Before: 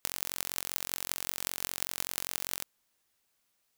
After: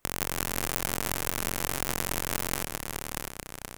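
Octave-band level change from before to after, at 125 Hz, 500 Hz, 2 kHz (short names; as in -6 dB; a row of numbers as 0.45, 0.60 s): +17.5, +13.0, +8.0 dB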